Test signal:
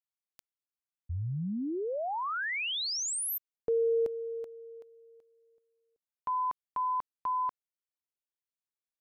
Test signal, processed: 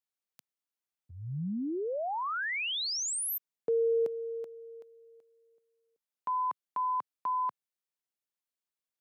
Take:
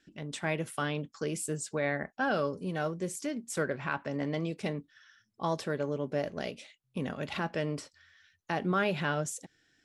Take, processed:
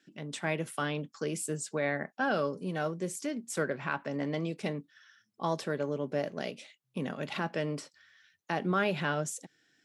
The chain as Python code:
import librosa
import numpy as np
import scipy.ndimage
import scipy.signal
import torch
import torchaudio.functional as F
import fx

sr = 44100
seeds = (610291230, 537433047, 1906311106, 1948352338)

y = scipy.signal.sosfilt(scipy.signal.butter(4, 130.0, 'highpass', fs=sr, output='sos'), x)